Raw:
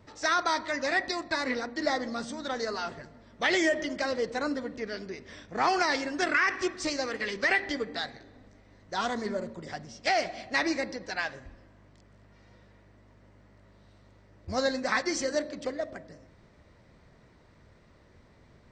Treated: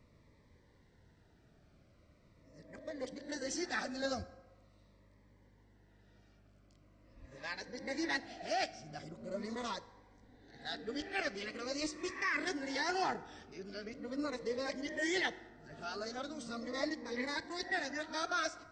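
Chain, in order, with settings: whole clip reversed; FDN reverb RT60 1.3 s, low-frequency decay 0.75×, high-frequency decay 0.5×, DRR 13.5 dB; cascading phaser falling 0.42 Hz; gain -7 dB

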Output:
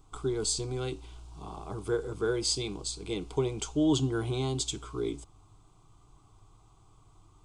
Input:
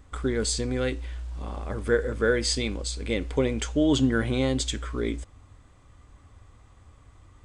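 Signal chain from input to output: fixed phaser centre 360 Hz, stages 8; gain -1 dB

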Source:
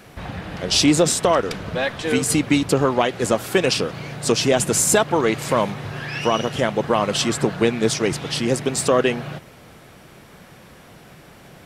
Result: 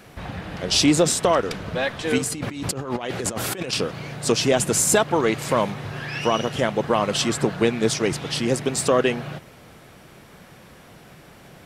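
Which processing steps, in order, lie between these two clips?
2.18–3.73 negative-ratio compressor -27 dBFS, ratio -1; gain -1.5 dB

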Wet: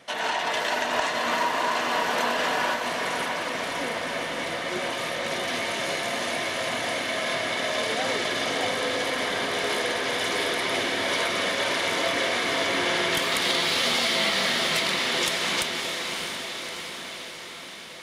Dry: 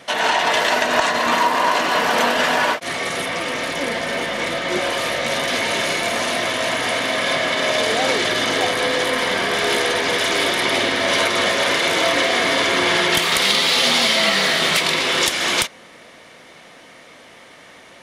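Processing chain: diffused feedback echo 0.615 s, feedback 64%, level -5 dB; gain -9 dB

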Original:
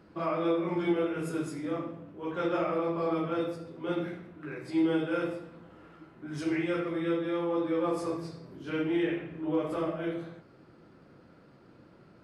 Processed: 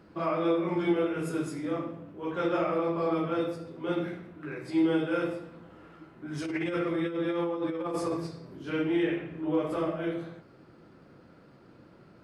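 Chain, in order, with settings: 6.44–8.27 negative-ratio compressor -31 dBFS, ratio -0.5; gain +1.5 dB

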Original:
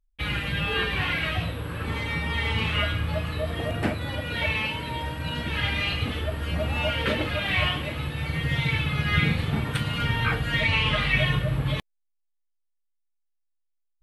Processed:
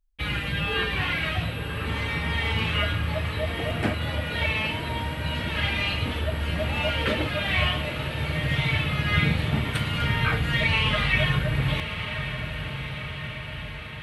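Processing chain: diffused feedback echo 1.093 s, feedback 65%, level -9 dB

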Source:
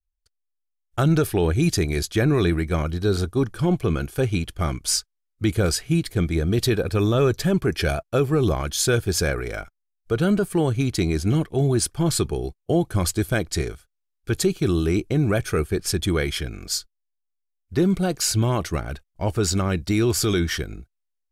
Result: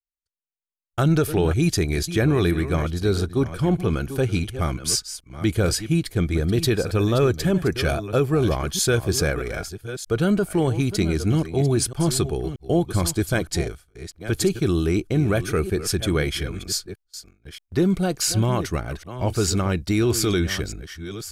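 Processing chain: reverse delay 0.628 s, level -12 dB; gate with hold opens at -33 dBFS

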